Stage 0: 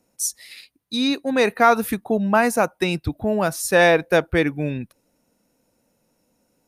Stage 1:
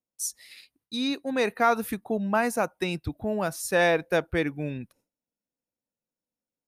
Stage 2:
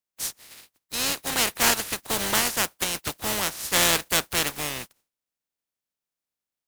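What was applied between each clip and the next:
gate with hold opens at -50 dBFS; trim -7 dB
spectral contrast reduction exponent 0.2; loudspeaker Doppler distortion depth 0.29 ms; trim +2.5 dB

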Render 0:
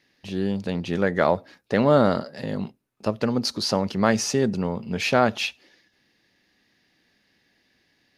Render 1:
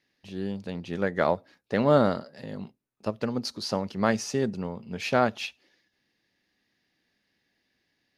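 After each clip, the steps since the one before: upward expansion 1.5:1, over -28 dBFS; trim -2 dB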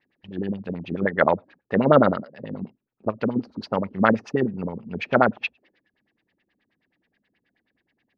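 dynamic bell 1.4 kHz, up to +4 dB, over -36 dBFS, Q 0.92; LFO low-pass sine 9.4 Hz 210–3100 Hz; trim +1.5 dB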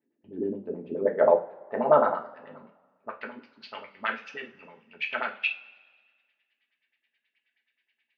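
band-pass sweep 330 Hz -> 2.7 kHz, 0.47–3.71 s; two-slope reverb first 0.3 s, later 1.6 s, from -21 dB, DRR 0 dB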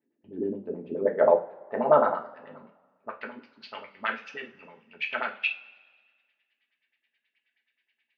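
no audible change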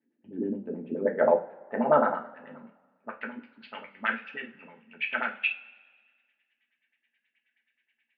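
cabinet simulation 120–3100 Hz, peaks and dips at 230 Hz +5 dB, 400 Hz -5 dB, 640 Hz -4 dB, 1.1 kHz -6 dB, 1.6 kHz +3 dB; trim +1 dB

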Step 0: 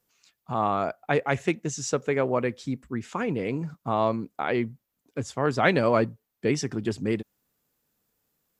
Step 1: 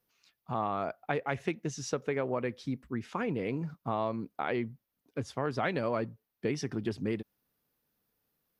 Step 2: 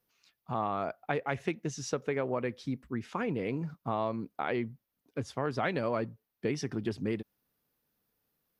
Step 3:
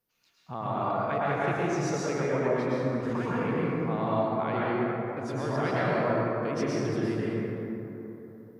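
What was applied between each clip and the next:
peaking EQ 7.4 kHz -12 dB 0.39 oct; compression 4:1, threshold -24 dBFS, peak gain reduction 8.5 dB; trim -3.5 dB
no audible change
plate-style reverb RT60 3.5 s, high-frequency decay 0.35×, pre-delay 95 ms, DRR -8 dB; trim -3.5 dB

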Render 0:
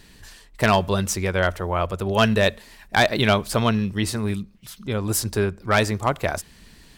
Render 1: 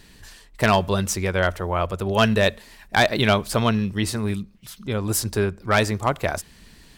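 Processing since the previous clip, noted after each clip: no audible change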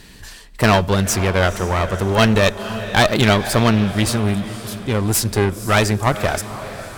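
echo that smears into a reverb 503 ms, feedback 47%, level -15 dB; one-sided clip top -25 dBFS; trim +7 dB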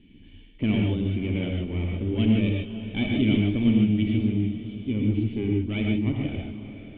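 cascade formant filter i; reverberation, pre-delay 3 ms, DRR 0 dB

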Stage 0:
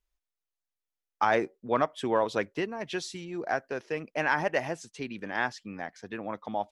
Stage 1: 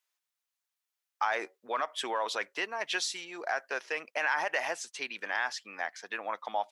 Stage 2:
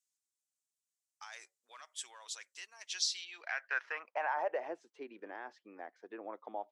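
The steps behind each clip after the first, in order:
peak limiter -21.5 dBFS, peak gain reduction 9.5 dB; high-pass 870 Hz 12 dB/octave; trim +6.5 dB
band-pass sweep 7.6 kHz -> 340 Hz, 2.81–4.75 s; trim +3 dB

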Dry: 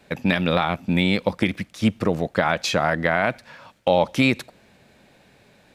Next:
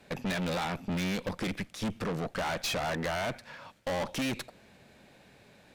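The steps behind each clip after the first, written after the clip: valve stage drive 29 dB, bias 0.6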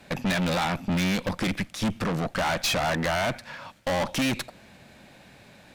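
peaking EQ 430 Hz -6 dB 0.43 oct; trim +7 dB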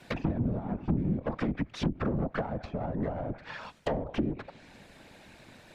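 whisper effect; low-pass that closes with the level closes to 330 Hz, closed at -21 dBFS; trim -2 dB

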